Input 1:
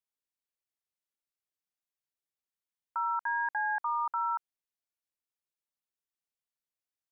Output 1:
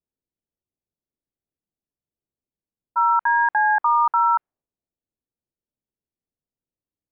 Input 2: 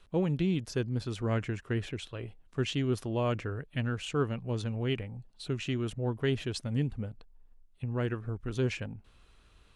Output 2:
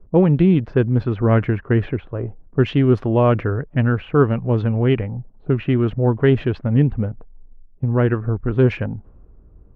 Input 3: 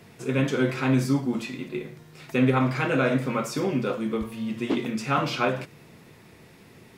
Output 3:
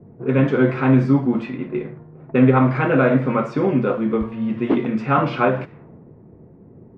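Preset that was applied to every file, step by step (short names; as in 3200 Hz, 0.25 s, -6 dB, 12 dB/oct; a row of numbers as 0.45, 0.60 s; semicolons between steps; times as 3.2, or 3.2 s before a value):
low-pass opened by the level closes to 370 Hz, open at -25 dBFS; LPF 1700 Hz 12 dB/oct; match loudness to -19 LUFS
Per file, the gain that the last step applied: +14.0, +14.5, +7.5 dB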